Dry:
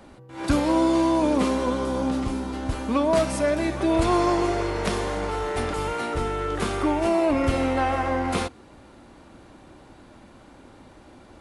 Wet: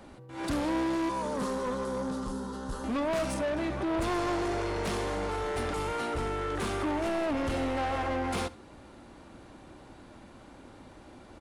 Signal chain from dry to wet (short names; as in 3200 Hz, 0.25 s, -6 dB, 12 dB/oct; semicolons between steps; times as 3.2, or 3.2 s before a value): 1.09–2.84 fixed phaser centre 460 Hz, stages 8; 3.34–4 high shelf 5200 Hz -10.5 dB; soft clip -25 dBFS, distortion -9 dB; on a send: echo 71 ms -20.5 dB; on the sum: gain -2 dB